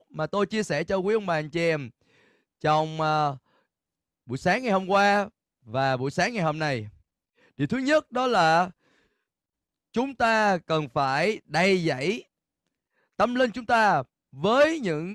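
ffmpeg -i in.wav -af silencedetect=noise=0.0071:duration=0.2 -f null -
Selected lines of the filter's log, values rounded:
silence_start: 1.89
silence_end: 2.64 | silence_duration: 0.75
silence_start: 3.37
silence_end: 4.28 | silence_duration: 0.91
silence_start: 5.28
silence_end: 5.67 | silence_duration: 0.39
silence_start: 6.89
silence_end: 7.59 | silence_duration: 0.70
silence_start: 8.70
silence_end: 9.94 | silence_duration: 1.24
silence_start: 12.21
silence_end: 13.19 | silence_duration: 0.98
silence_start: 14.03
silence_end: 14.33 | silence_duration: 0.30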